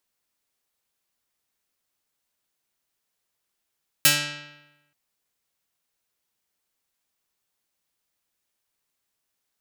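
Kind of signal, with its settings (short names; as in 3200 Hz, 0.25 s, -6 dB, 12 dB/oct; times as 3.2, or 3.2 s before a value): plucked string D3, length 0.88 s, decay 1.03 s, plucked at 0.42, medium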